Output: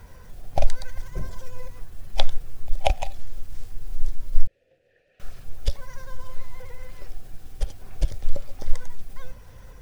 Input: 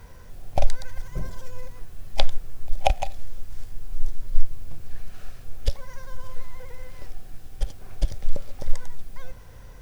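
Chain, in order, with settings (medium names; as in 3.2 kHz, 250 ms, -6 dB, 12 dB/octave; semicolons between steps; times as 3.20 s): coarse spectral quantiser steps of 15 dB; 4.47–5.20 s: vowel filter e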